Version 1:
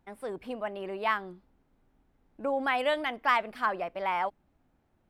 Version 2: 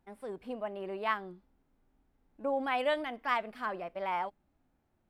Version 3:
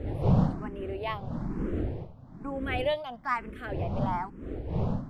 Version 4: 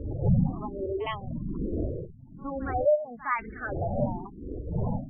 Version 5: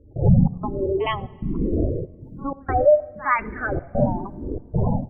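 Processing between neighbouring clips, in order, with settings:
harmonic-percussive split percussive -7 dB; gain -2 dB
wind noise 240 Hz -31 dBFS; endless phaser +1.1 Hz; gain +2.5 dB
LFO low-pass saw down 0.94 Hz 360–4300 Hz; spectral gate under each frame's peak -15 dB strong; pre-echo 61 ms -15.5 dB
step gate ".xx.xxxx.xxxx.xx" 95 bpm -24 dB; on a send at -19.5 dB: reverb RT60 1.8 s, pre-delay 3 ms; on the sum: gain +8 dB

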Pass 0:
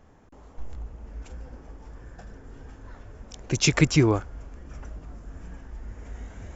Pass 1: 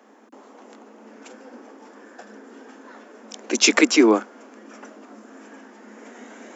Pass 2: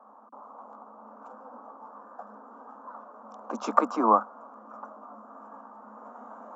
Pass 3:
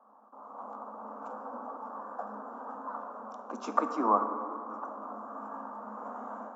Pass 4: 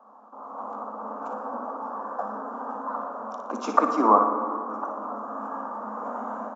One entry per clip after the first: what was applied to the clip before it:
Chebyshev high-pass 210 Hz, order 10; gain +7.5 dB
EQ curve 190 Hz 0 dB, 370 Hz -15 dB, 550 Hz +1 dB, 1200 Hz +11 dB, 2000 Hz -27 dB, 3000 Hz -25 dB; gain -3 dB
AGC gain up to 12 dB; plate-style reverb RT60 3 s, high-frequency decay 0.3×, pre-delay 0 ms, DRR 6 dB; gain -8 dB
on a send: flutter echo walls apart 10.1 m, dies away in 0.45 s; on the sum: downsampling 16000 Hz; gain +7.5 dB

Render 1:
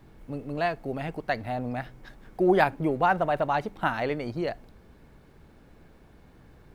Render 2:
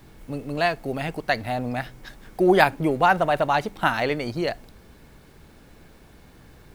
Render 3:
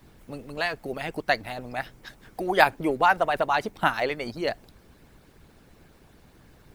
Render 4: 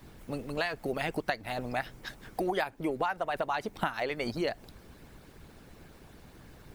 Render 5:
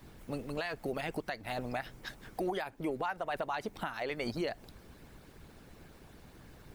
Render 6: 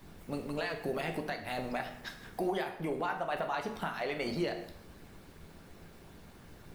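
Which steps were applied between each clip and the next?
high shelf 2700 Hz +10 dB; gain +3.5 dB
harmonic-percussive split harmonic -13 dB
compressor 16:1, threshold -29 dBFS, peak gain reduction 18.5 dB; gain +2 dB
limiter -23.5 dBFS, peak gain reduction 7.5 dB; gain -2 dB
plate-style reverb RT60 0.76 s, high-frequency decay 0.85×, DRR 3.5 dB

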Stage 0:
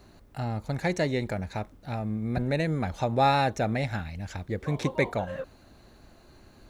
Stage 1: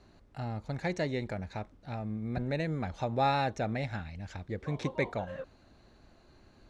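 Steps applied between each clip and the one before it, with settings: LPF 6500 Hz 12 dB/oct; gain -5.5 dB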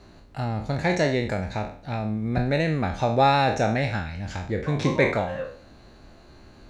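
spectral trails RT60 0.48 s; gain +8.5 dB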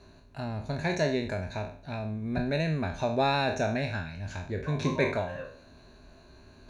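ripple EQ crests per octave 1.5, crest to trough 8 dB; reverse; upward compressor, threshold -42 dBFS; reverse; gain -6.5 dB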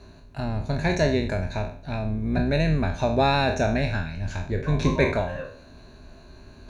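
octaver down 2 oct, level -6 dB; low shelf 200 Hz +3 dB; gain +4.5 dB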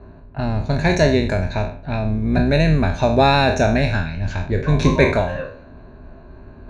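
low-pass opened by the level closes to 1200 Hz, open at -20 dBFS; gain +6.5 dB

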